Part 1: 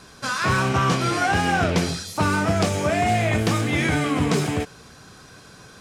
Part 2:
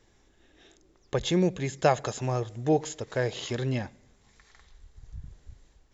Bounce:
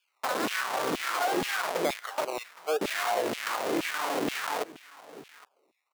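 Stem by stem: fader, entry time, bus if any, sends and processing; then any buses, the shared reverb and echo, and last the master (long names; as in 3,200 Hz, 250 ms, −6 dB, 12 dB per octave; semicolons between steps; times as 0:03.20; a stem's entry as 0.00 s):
−1.5 dB, 0.00 s, muted 0:02.25–0:02.81, no send, echo send −22 dB, comparator with hysteresis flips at −21.5 dBFS
−2.0 dB, 0.00 s, no send, no echo send, high-pass filter 390 Hz 24 dB per octave; high-shelf EQ 5,700 Hz −11.5 dB; sample-and-hold swept by an LFO 22×, swing 60% 0.91 Hz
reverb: not used
echo: single-tap delay 814 ms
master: high-pass filter 120 Hz; auto-filter high-pass saw down 2.1 Hz 260–2,900 Hz; downward compressor 2 to 1, threshold −29 dBFS, peak gain reduction 7.5 dB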